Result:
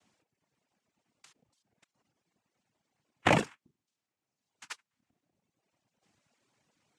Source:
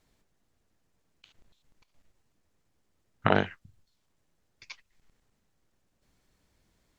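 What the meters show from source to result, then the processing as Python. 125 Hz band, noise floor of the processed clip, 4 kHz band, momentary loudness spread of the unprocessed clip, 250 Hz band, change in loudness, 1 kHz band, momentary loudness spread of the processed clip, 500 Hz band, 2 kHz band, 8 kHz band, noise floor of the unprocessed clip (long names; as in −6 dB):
−2.0 dB, below −85 dBFS, +1.5 dB, 8 LU, −1.5 dB, −0.5 dB, −1.0 dB, 20 LU, −2.5 dB, 0.0 dB, can't be measured, −75 dBFS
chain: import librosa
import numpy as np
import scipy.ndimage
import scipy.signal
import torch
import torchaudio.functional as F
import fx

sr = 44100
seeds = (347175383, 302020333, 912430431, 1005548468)

y = fx.noise_vocoder(x, sr, seeds[0], bands=4)
y = fx.dereverb_blind(y, sr, rt60_s=1.2)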